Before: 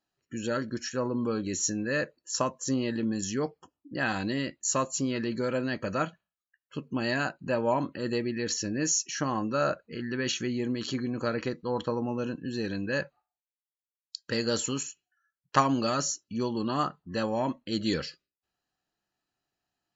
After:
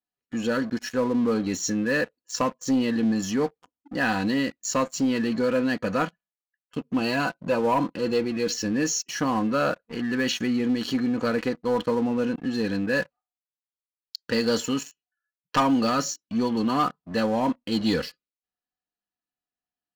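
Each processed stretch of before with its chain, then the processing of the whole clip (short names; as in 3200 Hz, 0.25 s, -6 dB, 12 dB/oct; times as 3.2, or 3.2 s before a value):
6.98–8.54 notch 1800 Hz, Q 5 + comb 6 ms, depth 37%
whole clip: LPF 5000 Hz 12 dB/oct; comb 4.1 ms, depth 48%; sample leveller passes 3; gain -6.5 dB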